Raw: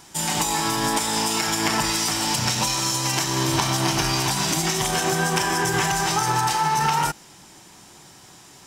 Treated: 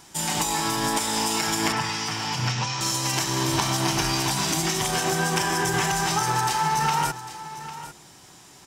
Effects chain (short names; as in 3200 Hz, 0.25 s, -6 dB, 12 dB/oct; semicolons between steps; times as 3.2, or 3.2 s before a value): 1.72–2.81 speaker cabinet 110–5500 Hz, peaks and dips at 120 Hz +8 dB, 220 Hz -6 dB, 330 Hz -8 dB, 610 Hz -8 dB, 4000 Hz -7 dB; echo 0.8 s -14 dB; gain -2 dB